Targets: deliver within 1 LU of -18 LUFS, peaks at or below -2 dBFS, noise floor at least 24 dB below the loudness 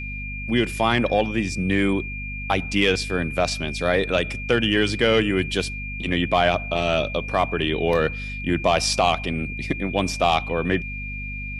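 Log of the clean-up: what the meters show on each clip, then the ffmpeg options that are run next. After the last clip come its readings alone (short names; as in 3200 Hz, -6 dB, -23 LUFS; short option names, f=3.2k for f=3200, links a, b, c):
hum 50 Hz; harmonics up to 250 Hz; hum level -31 dBFS; steady tone 2400 Hz; tone level -32 dBFS; loudness -22.5 LUFS; peak -6.5 dBFS; loudness target -18.0 LUFS
-> -af "bandreject=f=50:t=h:w=4,bandreject=f=100:t=h:w=4,bandreject=f=150:t=h:w=4,bandreject=f=200:t=h:w=4,bandreject=f=250:t=h:w=4"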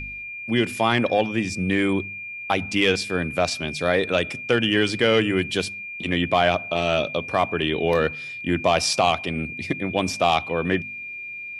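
hum none; steady tone 2400 Hz; tone level -32 dBFS
-> -af "bandreject=f=2.4k:w=30"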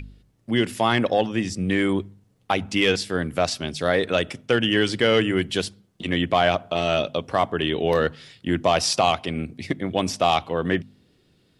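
steady tone none; loudness -23.0 LUFS; peak -7.5 dBFS; loudness target -18.0 LUFS
-> -af "volume=5dB"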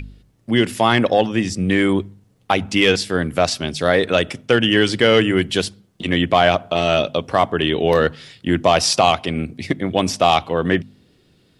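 loudness -18.0 LUFS; peak -2.5 dBFS; noise floor -58 dBFS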